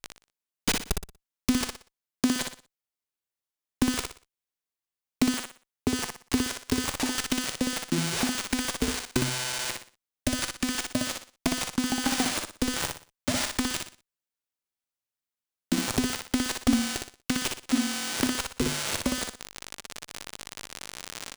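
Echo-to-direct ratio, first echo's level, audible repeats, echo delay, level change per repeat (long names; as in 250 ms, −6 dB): −4.0 dB, −4.5 dB, 3, 60 ms, −10.0 dB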